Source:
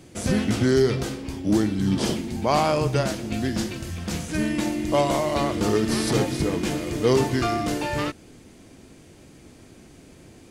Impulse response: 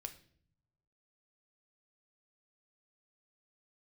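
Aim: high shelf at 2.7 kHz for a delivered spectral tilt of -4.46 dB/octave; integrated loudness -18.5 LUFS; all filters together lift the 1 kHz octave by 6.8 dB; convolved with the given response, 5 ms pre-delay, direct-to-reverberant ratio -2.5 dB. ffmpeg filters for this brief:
-filter_complex "[0:a]equalizer=f=1000:t=o:g=8,highshelf=f=2700:g=6.5,asplit=2[s0][s1];[1:a]atrim=start_sample=2205,adelay=5[s2];[s1][s2]afir=irnorm=-1:irlink=0,volume=2.11[s3];[s0][s3]amix=inputs=2:normalize=0,volume=0.794"

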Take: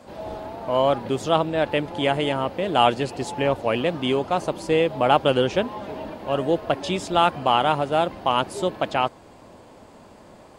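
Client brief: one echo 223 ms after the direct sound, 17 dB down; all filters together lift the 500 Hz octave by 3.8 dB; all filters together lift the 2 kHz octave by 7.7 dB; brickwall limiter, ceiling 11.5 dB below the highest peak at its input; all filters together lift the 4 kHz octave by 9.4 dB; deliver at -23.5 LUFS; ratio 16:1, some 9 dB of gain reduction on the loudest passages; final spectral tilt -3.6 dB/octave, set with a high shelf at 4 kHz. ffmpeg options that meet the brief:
-af "equalizer=f=500:t=o:g=4,equalizer=f=2000:t=o:g=6,highshelf=f=4000:g=6.5,equalizer=f=4000:t=o:g=7,acompressor=threshold=0.141:ratio=16,alimiter=limit=0.158:level=0:latency=1,aecho=1:1:223:0.141,volume=1.68"

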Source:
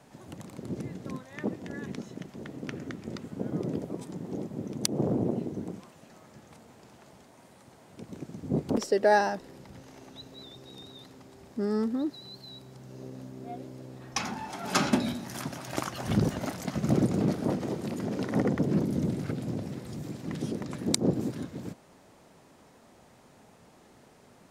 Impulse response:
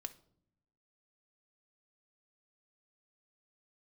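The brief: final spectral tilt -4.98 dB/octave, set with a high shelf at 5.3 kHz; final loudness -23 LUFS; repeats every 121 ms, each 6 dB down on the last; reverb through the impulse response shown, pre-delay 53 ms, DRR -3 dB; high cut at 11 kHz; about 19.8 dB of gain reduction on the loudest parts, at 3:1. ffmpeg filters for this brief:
-filter_complex "[0:a]lowpass=11000,highshelf=f=5300:g=4.5,acompressor=threshold=0.00398:ratio=3,aecho=1:1:121|242|363|484|605|726:0.501|0.251|0.125|0.0626|0.0313|0.0157,asplit=2[s0][s1];[1:a]atrim=start_sample=2205,adelay=53[s2];[s1][s2]afir=irnorm=-1:irlink=0,volume=2.11[s3];[s0][s3]amix=inputs=2:normalize=0,volume=8.91"

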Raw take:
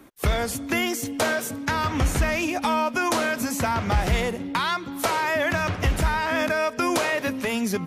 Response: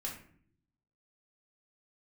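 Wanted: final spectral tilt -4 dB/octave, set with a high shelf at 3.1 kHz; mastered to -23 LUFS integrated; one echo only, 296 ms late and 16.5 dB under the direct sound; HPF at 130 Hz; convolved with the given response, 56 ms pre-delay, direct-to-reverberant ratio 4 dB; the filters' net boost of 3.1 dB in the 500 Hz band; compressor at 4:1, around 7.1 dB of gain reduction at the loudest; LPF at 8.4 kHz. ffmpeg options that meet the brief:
-filter_complex "[0:a]highpass=130,lowpass=8400,equalizer=f=500:t=o:g=4.5,highshelf=f=3100:g=-6.5,acompressor=threshold=0.0447:ratio=4,aecho=1:1:296:0.15,asplit=2[s0][s1];[1:a]atrim=start_sample=2205,adelay=56[s2];[s1][s2]afir=irnorm=-1:irlink=0,volume=0.596[s3];[s0][s3]amix=inputs=2:normalize=0,volume=1.88"

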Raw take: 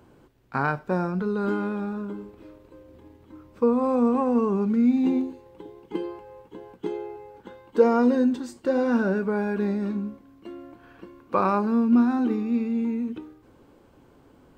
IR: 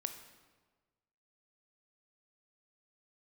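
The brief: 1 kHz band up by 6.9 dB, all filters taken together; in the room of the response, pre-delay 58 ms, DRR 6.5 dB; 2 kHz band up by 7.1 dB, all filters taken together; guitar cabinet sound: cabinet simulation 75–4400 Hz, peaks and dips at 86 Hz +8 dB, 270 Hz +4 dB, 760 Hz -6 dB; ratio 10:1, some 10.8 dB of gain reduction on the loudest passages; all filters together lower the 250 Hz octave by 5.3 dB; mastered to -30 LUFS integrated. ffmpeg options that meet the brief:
-filter_complex "[0:a]equalizer=f=250:t=o:g=-8.5,equalizer=f=1000:t=o:g=9,equalizer=f=2000:t=o:g=6,acompressor=threshold=0.0794:ratio=10,asplit=2[s0][s1];[1:a]atrim=start_sample=2205,adelay=58[s2];[s1][s2]afir=irnorm=-1:irlink=0,volume=0.531[s3];[s0][s3]amix=inputs=2:normalize=0,highpass=75,equalizer=f=86:t=q:w=4:g=8,equalizer=f=270:t=q:w=4:g=4,equalizer=f=760:t=q:w=4:g=-6,lowpass=f=4400:w=0.5412,lowpass=f=4400:w=1.3066,volume=0.794"

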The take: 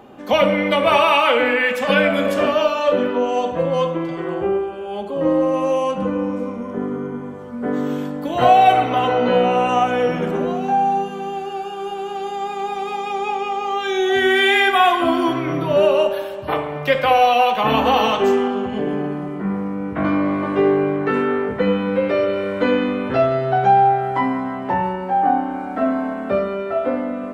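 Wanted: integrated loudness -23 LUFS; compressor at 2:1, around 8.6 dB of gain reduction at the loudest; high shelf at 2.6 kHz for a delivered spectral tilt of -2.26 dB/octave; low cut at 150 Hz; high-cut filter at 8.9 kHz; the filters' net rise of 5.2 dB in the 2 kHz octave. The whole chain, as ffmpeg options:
-af "highpass=150,lowpass=8900,equalizer=f=2000:t=o:g=3.5,highshelf=f=2600:g=6.5,acompressor=threshold=0.0708:ratio=2"

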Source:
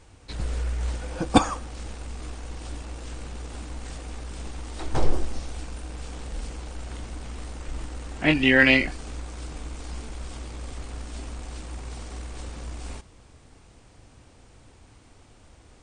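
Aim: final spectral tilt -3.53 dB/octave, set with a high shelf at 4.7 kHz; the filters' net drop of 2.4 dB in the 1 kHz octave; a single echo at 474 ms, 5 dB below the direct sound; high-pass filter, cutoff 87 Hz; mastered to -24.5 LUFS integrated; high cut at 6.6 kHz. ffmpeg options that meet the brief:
-af "highpass=87,lowpass=6600,equalizer=f=1000:t=o:g=-3,highshelf=f=4700:g=-7,aecho=1:1:474:0.562,volume=1.06"

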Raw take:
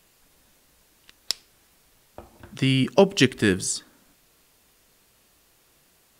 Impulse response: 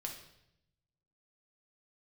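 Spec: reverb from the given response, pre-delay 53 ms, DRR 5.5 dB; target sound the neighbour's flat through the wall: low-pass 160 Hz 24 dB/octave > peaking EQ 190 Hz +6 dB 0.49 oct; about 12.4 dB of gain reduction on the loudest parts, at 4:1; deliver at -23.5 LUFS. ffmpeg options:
-filter_complex "[0:a]acompressor=threshold=0.0501:ratio=4,asplit=2[s0][s1];[1:a]atrim=start_sample=2205,adelay=53[s2];[s1][s2]afir=irnorm=-1:irlink=0,volume=0.631[s3];[s0][s3]amix=inputs=2:normalize=0,lowpass=f=160:w=0.5412,lowpass=f=160:w=1.3066,equalizer=f=190:t=o:w=0.49:g=6,volume=3.98"

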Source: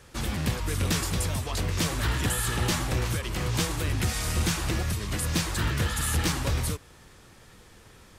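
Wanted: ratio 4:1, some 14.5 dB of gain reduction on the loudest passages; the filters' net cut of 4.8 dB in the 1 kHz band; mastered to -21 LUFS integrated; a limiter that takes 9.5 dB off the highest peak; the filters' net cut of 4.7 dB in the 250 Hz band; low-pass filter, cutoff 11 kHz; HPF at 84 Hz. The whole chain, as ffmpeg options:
-af "highpass=84,lowpass=11000,equalizer=f=250:t=o:g=-7,equalizer=f=1000:t=o:g=-6,acompressor=threshold=0.00708:ratio=4,volume=22.4,alimiter=limit=0.251:level=0:latency=1"

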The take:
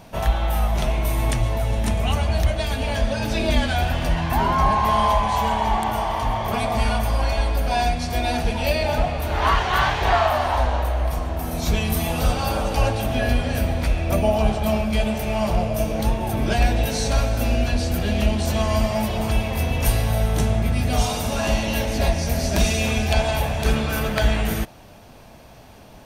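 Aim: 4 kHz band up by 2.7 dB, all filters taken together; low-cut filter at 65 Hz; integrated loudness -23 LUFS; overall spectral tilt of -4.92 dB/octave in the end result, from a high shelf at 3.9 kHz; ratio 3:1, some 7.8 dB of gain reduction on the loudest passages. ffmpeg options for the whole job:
-af "highpass=65,highshelf=f=3900:g=-3.5,equalizer=f=4000:t=o:g=5.5,acompressor=threshold=0.0501:ratio=3,volume=1.88"

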